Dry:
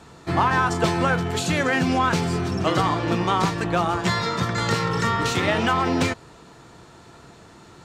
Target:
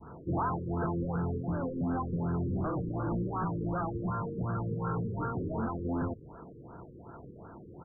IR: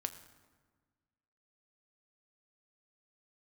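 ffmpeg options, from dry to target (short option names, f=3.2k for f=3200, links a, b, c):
-af "aresample=16000,asoftclip=type=tanh:threshold=-26.5dB,aresample=44100,adynamicequalizer=threshold=0.00631:dfrequency=590:dqfactor=0.72:tfrequency=590:tqfactor=0.72:attack=5:release=100:ratio=0.375:range=2.5:mode=cutabove:tftype=bell,afftfilt=real='re*lt(b*sr/1024,510*pow(1700/510,0.5+0.5*sin(2*PI*2.7*pts/sr)))':imag='im*lt(b*sr/1024,510*pow(1700/510,0.5+0.5*sin(2*PI*2.7*pts/sr)))':win_size=1024:overlap=0.75"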